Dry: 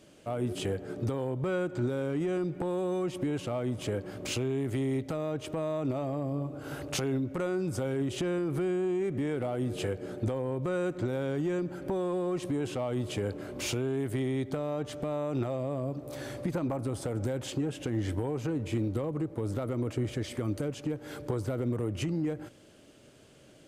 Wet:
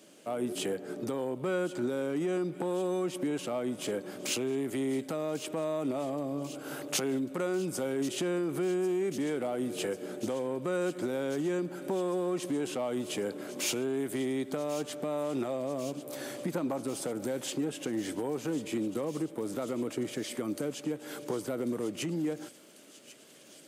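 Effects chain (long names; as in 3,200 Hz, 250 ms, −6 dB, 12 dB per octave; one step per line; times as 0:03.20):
high-pass filter 180 Hz 24 dB per octave
high-shelf EQ 6,900 Hz +9 dB
on a send: delay with a high-pass on its return 1,093 ms, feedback 80%, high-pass 2,600 Hz, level −13.5 dB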